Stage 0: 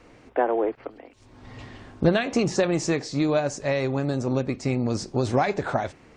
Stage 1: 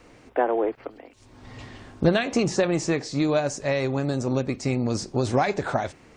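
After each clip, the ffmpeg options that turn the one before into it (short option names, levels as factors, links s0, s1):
-filter_complex "[0:a]highshelf=f=5600:g=6.5,acrossover=split=3500[s0][s1];[s1]alimiter=level_in=1.12:limit=0.0631:level=0:latency=1:release=487,volume=0.891[s2];[s0][s2]amix=inputs=2:normalize=0"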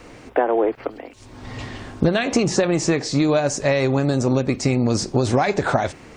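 -af "acompressor=threshold=0.0631:ratio=4,volume=2.82"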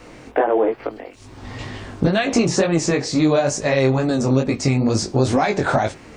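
-af "flanger=delay=18:depth=4.9:speed=2.2,volume=1.58"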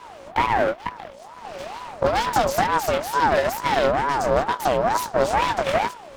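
-af "aeval=exprs='val(0)+0.01*(sin(2*PI*60*n/s)+sin(2*PI*2*60*n/s)/2+sin(2*PI*3*60*n/s)/3+sin(2*PI*4*60*n/s)/4+sin(2*PI*5*60*n/s)/5)':c=same,aeval=exprs='abs(val(0))':c=same,aeval=exprs='val(0)*sin(2*PI*770*n/s+770*0.3/2.2*sin(2*PI*2.2*n/s))':c=same"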